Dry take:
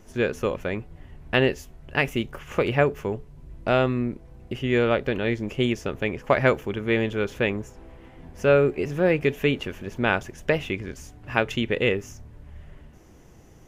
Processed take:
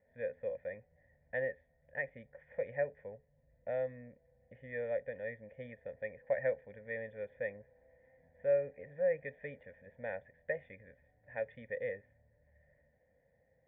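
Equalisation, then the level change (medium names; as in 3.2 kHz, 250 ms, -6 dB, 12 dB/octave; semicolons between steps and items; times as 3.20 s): cascade formant filter e; high-pass 65 Hz; static phaser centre 1.8 kHz, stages 8; -3.0 dB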